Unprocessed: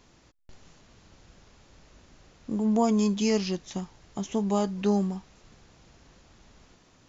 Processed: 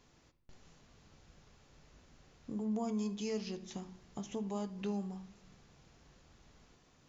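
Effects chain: compressor 2:1, threshold -33 dBFS, peak gain reduction 8 dB; reverb RT60 0.80 s, pre-delay 3 ms, DRR 9.5 dB; gain -7.5 dB

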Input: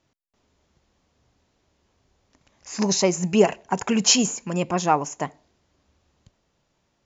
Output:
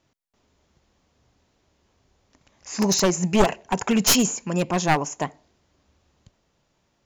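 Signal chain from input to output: one-sided fold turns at -16.5 dBFS; gain +1.5 dB

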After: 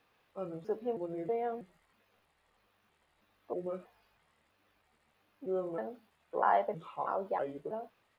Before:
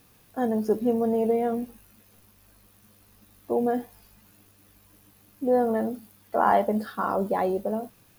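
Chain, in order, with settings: trilling pitch shifter -5 st, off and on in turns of 0.321 s; three-band isolator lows -15 dB, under 430 Hz, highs -21 dB, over 3800 Hz; gain -6 dB

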